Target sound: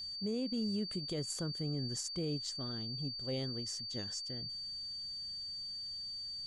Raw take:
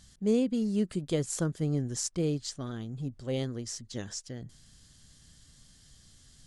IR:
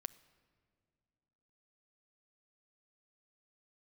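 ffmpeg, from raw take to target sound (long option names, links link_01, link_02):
-af "aeval=exprs='val(0)+0.0178*sin(2*PI*4600*n/s)':channel_layout=same,alimiter=limit=-22.5dB:level=0:latency=1:release=68,volume=-5.5dB"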